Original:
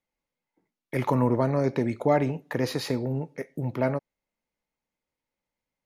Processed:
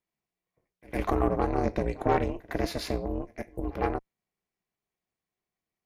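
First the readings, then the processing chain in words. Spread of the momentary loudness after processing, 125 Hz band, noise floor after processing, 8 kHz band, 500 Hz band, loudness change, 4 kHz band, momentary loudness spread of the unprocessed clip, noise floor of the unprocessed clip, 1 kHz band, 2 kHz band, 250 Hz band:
10 LU, -6.0 dB, under -85 dBFS, -3.0 dB, -3.0 dB, -3.0 dB, -2.5 dB, 9 LU, under -85 dBFS, +0.5 dB, -2.0 dB, -4.0 dB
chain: ring modulator 180 Hz; added harmonics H 4 -18 dB, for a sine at -11.5 dBFS; pre-echo 0.107 s -22 dB

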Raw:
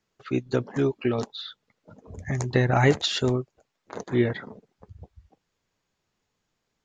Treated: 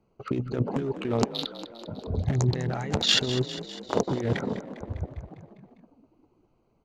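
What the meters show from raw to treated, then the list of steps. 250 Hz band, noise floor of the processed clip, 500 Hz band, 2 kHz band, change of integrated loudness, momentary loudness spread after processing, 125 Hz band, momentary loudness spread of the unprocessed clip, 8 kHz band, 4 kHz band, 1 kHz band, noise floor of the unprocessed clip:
-2.0 dB, -68 dBFS, -3.5 dB, -4.5 dB, -2.5 dB, 16 LU, -1.0 dB, 20 LU, +4.0 dB, +5.0 dB, -3.0 dB, -79 dBFS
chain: Wiener smoothing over 25 samples; negative-ratio compressor -32 dBFS, ratio -1; frequency-shifting echo 0.201 s, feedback 63%, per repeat +38 Hz, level -13 dB; gain +5.5 dB

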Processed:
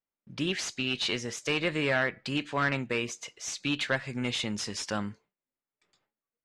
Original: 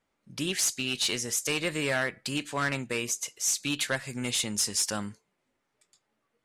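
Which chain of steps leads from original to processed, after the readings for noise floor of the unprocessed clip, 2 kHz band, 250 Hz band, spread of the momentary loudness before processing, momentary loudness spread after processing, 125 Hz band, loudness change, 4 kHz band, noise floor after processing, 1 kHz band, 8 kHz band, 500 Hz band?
-79 dBFS, +1.0 dB, +1.5 dB, 5 LU, 8 LU, +1.5 dB, -2.0 dB, -2.0 dB, under -85 dBFS, +1.5 dB, -11.0 dB, +1.5 dB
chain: gate with hold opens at -54 dBFS; LPF 3600 Hz 12 dB/oct; gain +1.5 dB

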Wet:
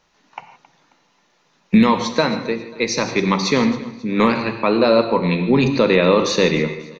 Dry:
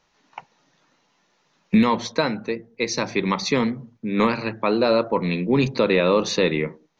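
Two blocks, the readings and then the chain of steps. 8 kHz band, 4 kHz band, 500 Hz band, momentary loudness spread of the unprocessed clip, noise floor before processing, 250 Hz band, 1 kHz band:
n/a, +4.5 dB, +4.0 dB, 8 LU, -66 dBFS, +4.5 dB, +4.0 dB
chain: feedback echo 0.269 s, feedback 40%, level -19 dB; non-linear reverb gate 0.19 s flat, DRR 8 dB; gain +3.5 dB

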